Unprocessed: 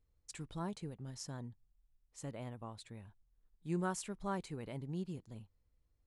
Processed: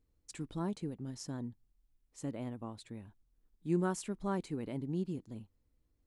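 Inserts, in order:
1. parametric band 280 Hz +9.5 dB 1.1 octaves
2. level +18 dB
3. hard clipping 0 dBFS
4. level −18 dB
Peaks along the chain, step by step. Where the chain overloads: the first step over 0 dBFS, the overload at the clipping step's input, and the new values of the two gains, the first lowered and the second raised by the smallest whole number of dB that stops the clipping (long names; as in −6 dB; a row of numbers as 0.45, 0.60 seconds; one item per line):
−21.0, −3.0, −3.0, −21.0 dBFS
no step passes full scale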